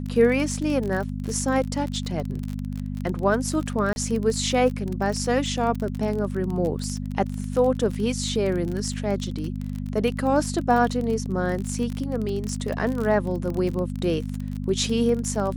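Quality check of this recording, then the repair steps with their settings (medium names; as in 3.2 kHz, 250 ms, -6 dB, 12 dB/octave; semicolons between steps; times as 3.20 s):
crackle 33 per s -27 dBFS
hum 50 Hz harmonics 5 -30 dBFS
3.93–3.96 s: dropout 31 ms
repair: de-click; de-hum 50 Hz, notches 5; interpolate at 3.93 s, 31 ms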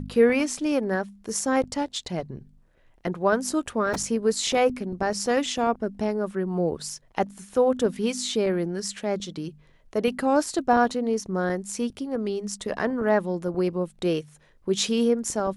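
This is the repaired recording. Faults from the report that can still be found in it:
nothing left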